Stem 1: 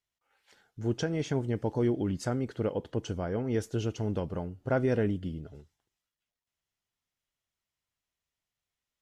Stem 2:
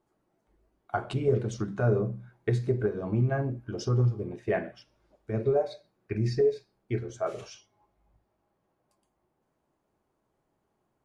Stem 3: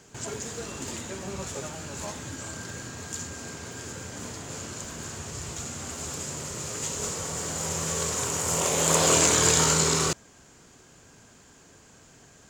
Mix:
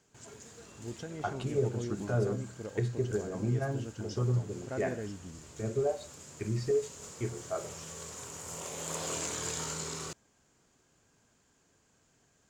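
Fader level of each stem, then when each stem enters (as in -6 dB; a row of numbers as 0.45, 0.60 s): -11.5, -5.0, -15.5 dB; 0.00, 0.30, 0.00 s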